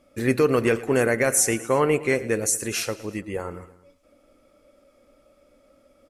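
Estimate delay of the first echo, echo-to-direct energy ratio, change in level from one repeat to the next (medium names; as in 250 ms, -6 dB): 112 ms, -16.5 dB, -4.5 dB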